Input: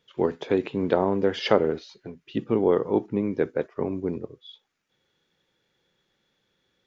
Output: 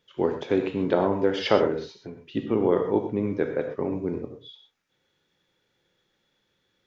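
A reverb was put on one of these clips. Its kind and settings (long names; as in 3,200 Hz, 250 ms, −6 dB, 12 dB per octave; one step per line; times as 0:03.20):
reverb whose tail is shaped and stops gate 150 ms flat, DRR 4.5 dB
level −1 dB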